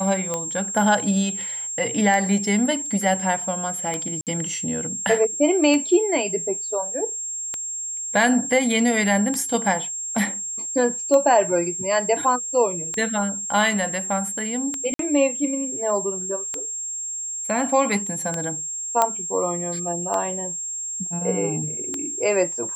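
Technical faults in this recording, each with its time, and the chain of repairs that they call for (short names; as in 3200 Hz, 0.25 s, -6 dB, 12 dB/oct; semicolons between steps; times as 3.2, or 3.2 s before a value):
tick 33 1/3 rpm -12 dBFS
tone 7500 Hz -27 dBFS
4.21–4.27 gap 58 ms
14.94–14.99 gap 53 ms
19.02 pop -4 dBFS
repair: de-click; notch 7500 Hz, Q 30; interpolate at 4.21, 58 ms; interpolate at 14.94, 53 ms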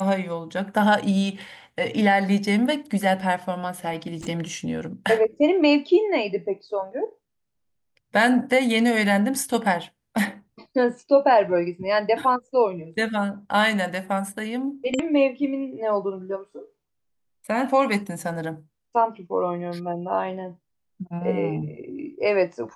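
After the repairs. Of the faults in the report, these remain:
none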